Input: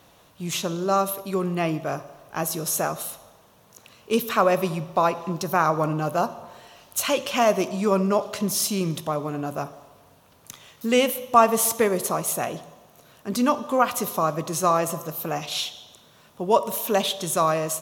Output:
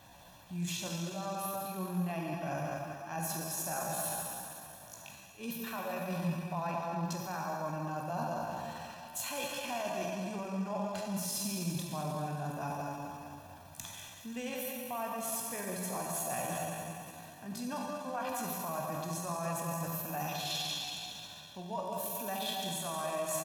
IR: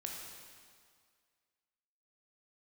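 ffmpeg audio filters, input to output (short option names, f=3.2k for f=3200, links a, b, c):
-filter_complex "[0:a]alimiter=limit=-12dB:level=0:latency=1:release=254,aecho=1:1:151|302|453|604:0.266|0.104|0.0405|0.0158,areverse,acompressor=threshold=-33dB:ratio=8,areverse,aecho=1:1:1.2:0.62[a];[1:a]atrim=start_sample=2205[b];[a][b]afir=irnorm=-1:irlink=0,atempo=0.76"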